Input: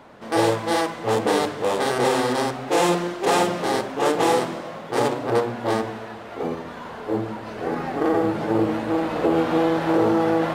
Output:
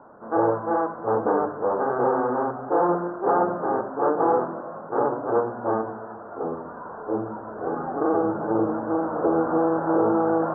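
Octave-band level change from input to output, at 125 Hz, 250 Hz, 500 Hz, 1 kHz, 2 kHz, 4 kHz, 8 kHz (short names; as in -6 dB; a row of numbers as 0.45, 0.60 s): -6.0 dB, -2.5 dB, -1.5 dB, -0.5 dB, -8.0 dB, under -40 dB, under -40 dB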